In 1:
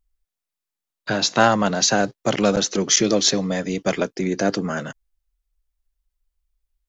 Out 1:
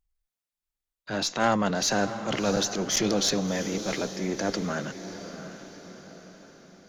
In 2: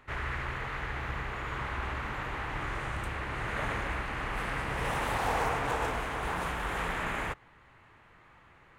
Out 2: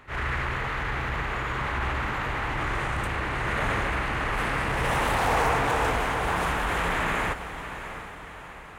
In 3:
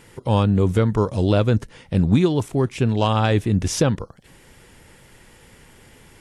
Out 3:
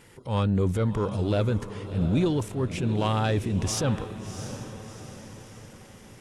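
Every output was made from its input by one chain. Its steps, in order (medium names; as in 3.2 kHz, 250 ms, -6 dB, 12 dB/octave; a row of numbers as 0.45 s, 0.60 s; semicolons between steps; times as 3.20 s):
single-diode clipper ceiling -8.5 dBFS; transient shaper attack -8 dB, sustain +2 dB; echo that smears into a reverb 692 ms, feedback 50%, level -11 dB; normalise loudness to -27 LUFS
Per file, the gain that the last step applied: -4.5 dB, +7.0 dB, -4.0 dB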